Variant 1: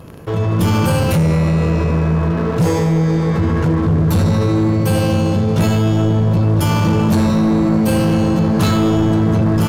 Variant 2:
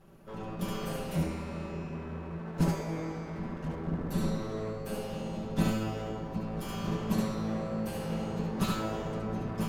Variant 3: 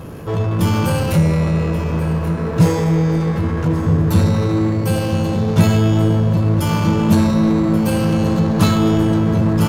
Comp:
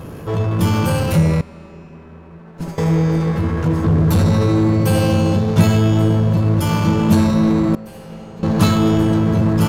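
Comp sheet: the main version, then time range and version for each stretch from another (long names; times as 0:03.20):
3
0:01.41–0:02.78: punch in from 2
0:03.84–0:05.39: punch in from 1
0:07.75–0:08.43: punch in from 2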